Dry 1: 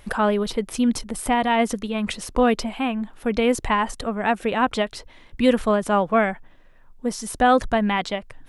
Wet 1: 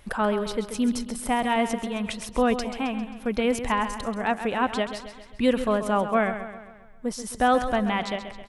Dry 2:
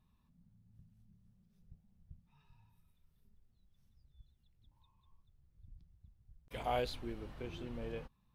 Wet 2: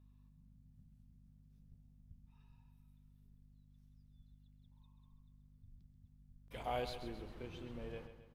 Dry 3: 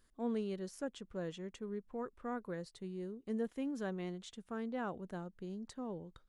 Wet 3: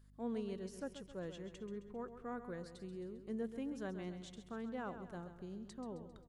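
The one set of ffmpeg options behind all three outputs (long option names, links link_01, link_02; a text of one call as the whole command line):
ffmpeg -i in.wav -filter_complex "[0:a]aeval=exprs='val(0)+0.00126*(sin(2*PI*50*n/s)+sin(2*PI*2*50*n/s)/2+sin(2*PI*3*50*n/s)/3+sin(2*PI*4*50*n/s)/4+sin(2*PI*5*50*n/s)/5)':channel_layout=same,asplit=2[link_01][link_02];[link_02]aecho=0:1:133|266|399|532|665|798:0.299|0.152|0.0776|0.0396|0.0202|0.0103[link_03];[link_01][link_03]amix=inputs=2:normalize=0,volume=-4dB" out.wav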